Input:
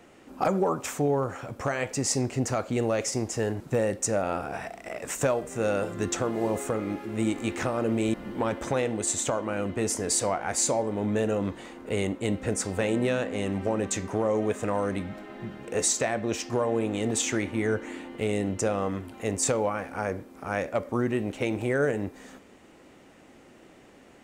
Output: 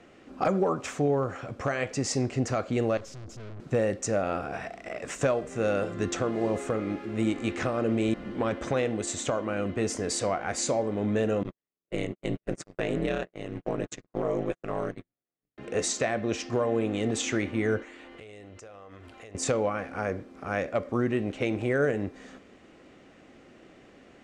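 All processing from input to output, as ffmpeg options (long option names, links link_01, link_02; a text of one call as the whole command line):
ffmpeg -i in.wav -filter_complex "[0:a]asettb=1/sr,asplit=3[link_01][link_02][link_03];[link_01]atrim=end=2.974[link_04];[link_02]atrim=start=2.97:end=3.6,asetpts=PTS-STARTPTS,afade=type=in:duration=0.004:curve=qsin,afade=type=out:start_time=0.626:duration=0.004:curve=qsin,asuperstop=centerf=1500:order=8:qfactor=0.55,bass=frequency=250:gain=11,treble=frequency=4000:gain=-4,aeval=exprs='(tanh(112*val(0)+0.55)-tanh(0.55))/112':channel_layout=same[link_05];[link_03]atrim=start=3.596[link_06];[link_04][link_05]acrossfade=duration=0.004:curve1=hsin:curve2=qsin[link_07];[link_07][link_06]acrossfade=duration=0.004:curve1=qsin:curve2=hsin,asettb=1/sr,asplit=3[link_08][link_09][link_10];[link_08]atrim=end=11.434[link_11];[link_09]atrim=start=11.43:end=15.58,asetpts=PTS-STARTPTS,afade=type=in:duration=0.004:curve=qsin,afade=type=out:start_time=4.146:duration=0.004:curve=qsin,agate=range=-52dB:threshold=-29dB:ratio=16:release=100:detection=peak,aeval=exprs='val(0)*sin(2*PI*80*n/s)':channel_layout=same[link_12];[link_10]atrim=start=15.576[link_13];[link_11][link_12]acrossfade=duration=0.004:curve1=hsin:curve2=qsin[link_14];[link_14][link_13]acrossfade=duration=0.004:curve1=qsin:curve2=hsin,asettb=1/sr,asplit=3[link_15][link_16][link_17];[link_15]atrim=end=17.824[link_18];[link_16]atrim=start=17.82:end=19.35,asetpts=PTS-STARTPTS,afade=type=in:duration=0.004:curve=qsin,afade=type=out:start_time=1.526:duration=0.004:curve=qsin,equalizer=frequency=190:width_type=o:width=1.7:gain=-12.5,acompressor=threshold=-42dB:ratio=12:attack=3.2:release=140:knee=1:detection=peak[link_19];[link_17]atrim=start=19.346[link_20];[link_18][link_19]acrossfade=duration=0.004:curve1=hsin:curve2=qsin[link_21];[link_21][link_20]acrossfade=duration=0.004:curve1=qsin:curve2=hsin,lowpass=5700,equalizer=frequency=900:width=7.9:gain=-8.5" out.wav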